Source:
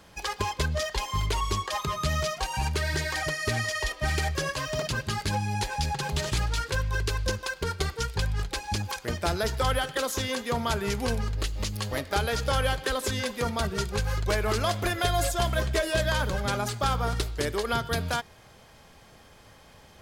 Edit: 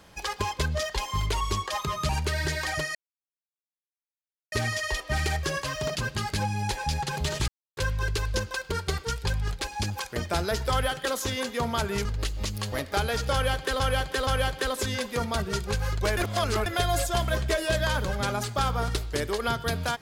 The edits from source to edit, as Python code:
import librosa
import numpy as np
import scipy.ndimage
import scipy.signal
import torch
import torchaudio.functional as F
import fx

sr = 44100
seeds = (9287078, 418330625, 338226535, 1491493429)

y = fx.edit(x, sr, fx.cut(start_s=2.09, length_s=0.49),
    fx.insert_silence(at_s=3.44, length_s=1.57),
    fx.silence(start_s=6.4, length_s=0.29),
    fx.cut(start_s=10.97, length_s=0.27),
    fx.repeat(start_s=12.52, length_s=0.47, count=3),
    fx.reverse_span(start_s=14.42, length_s=0.49), tone=tone)